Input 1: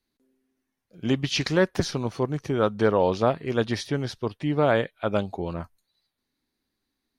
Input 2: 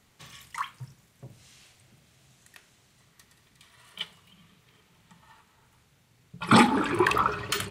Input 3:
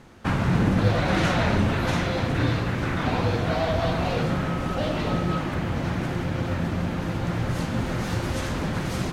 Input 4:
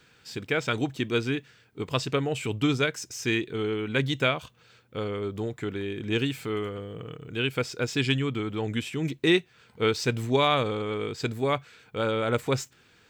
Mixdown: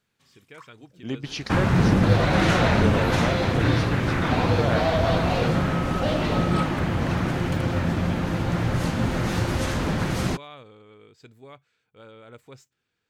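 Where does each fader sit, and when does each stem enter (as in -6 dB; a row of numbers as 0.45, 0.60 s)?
-7.0, -16.0, +2.5, -20.0 dB; 0.00, 0.00, 1.25, 0.00 s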